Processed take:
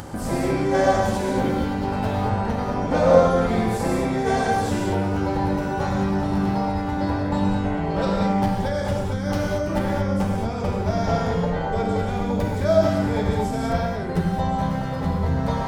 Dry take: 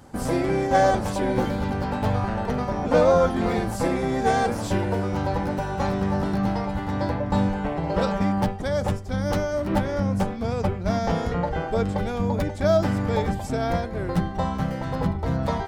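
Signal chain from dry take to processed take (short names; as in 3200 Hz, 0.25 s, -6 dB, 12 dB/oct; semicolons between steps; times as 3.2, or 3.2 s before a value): non-linear reverb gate 0.25 s flat, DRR -2.5 dB; upward compressor, threshold -22 dBFS; gain -3 dB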